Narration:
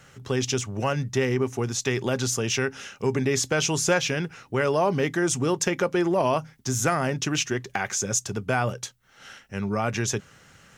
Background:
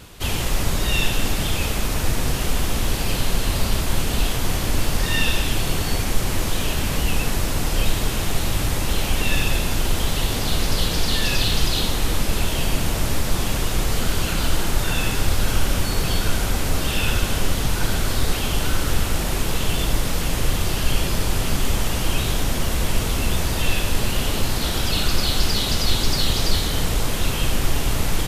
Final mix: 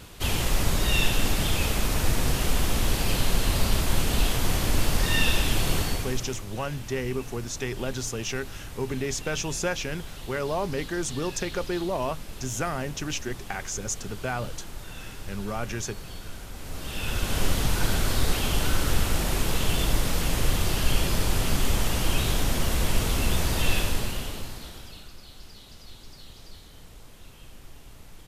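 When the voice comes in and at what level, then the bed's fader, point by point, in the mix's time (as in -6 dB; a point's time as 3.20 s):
5.75 s, -6.0 dB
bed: 5.79 s -2.5 dB
6.46 s -18.5 dB
16.51 s -18.5 dB
17.43 s -3 dB
23.80 s -3 dB
25.15 s -26.5 dB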